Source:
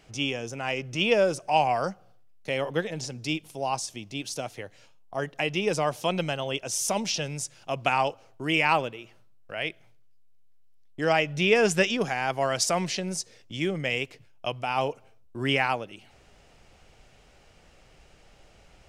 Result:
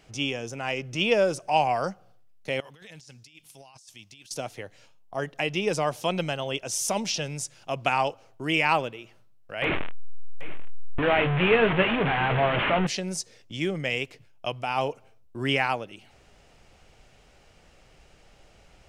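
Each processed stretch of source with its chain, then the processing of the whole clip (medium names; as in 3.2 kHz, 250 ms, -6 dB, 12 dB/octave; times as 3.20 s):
2.60–4.31 s: amplifier tone stack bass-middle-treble 5-5-5 + compressor with a negative ratio -50 dBFS
9.62–12.87 s: one-bit delta coder 16 kbps, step -19 dBFS + doubling 22 ms -10.5 dB + delay 787 ms -16.5 dB
whole clip: none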